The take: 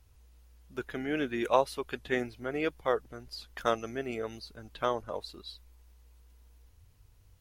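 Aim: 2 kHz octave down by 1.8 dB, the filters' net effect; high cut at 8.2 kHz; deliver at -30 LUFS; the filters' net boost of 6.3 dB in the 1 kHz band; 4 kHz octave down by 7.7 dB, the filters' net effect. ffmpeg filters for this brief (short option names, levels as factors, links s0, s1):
-af "lowpass=8200,equalizer=f=1000:t=o:g=9,equalizer=f=2000:t=o:g=-4,equalizer=f=4000:t=o:g=-8.5,volume=1.06"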